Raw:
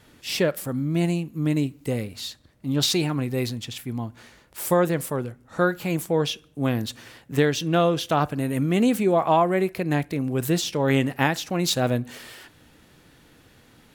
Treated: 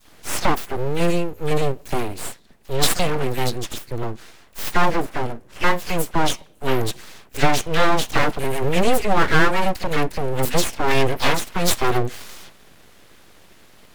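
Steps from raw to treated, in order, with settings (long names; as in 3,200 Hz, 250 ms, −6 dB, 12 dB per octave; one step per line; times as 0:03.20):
0:04.72–0:05.23: running median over 15 samples
all-pass dispersion lows, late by 54 ms, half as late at 1,100 Hz
full-wave rectification
level +6.5 dB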